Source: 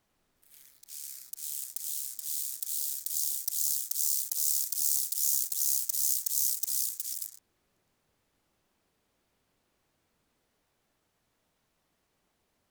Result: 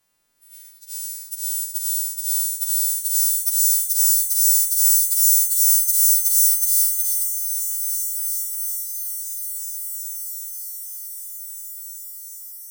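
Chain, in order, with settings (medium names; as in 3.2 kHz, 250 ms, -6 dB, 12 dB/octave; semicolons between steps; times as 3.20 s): partials quantised in pitch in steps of 2 st; echo that smears into a reverb 1560 ms, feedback 57%, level -8.5 dB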